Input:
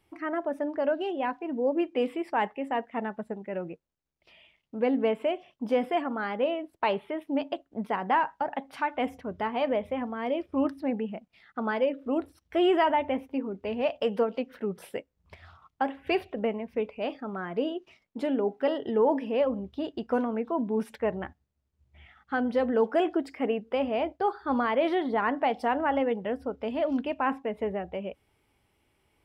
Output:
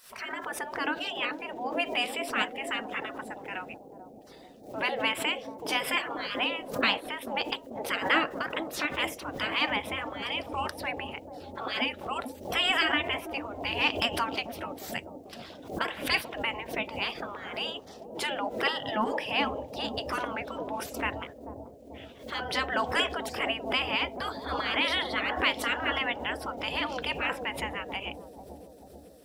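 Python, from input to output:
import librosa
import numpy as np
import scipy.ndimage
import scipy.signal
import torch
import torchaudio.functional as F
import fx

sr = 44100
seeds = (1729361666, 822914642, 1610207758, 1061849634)

y = fx.high_shelf(x, sr, hz=3000.0, db=11.5)
y = fx.spec_gate(y, sr, threshold_db=-15, keep='weak')
y = fx.echo_bbd(y, sr, ms=439, stages=2048, feedback_pct=68, wet_db=-5.5)
y = fx.pre_swell(y, sr, db_per_s=110.0)
y = y * librosa.db_to_amplitude(8.5)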